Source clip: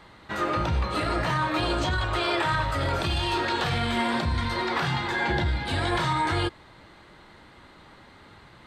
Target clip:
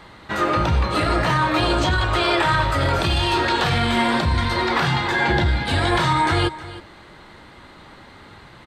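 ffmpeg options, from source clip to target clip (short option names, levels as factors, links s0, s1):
-af "aecho=1:1:315:0.15,volume=2.11"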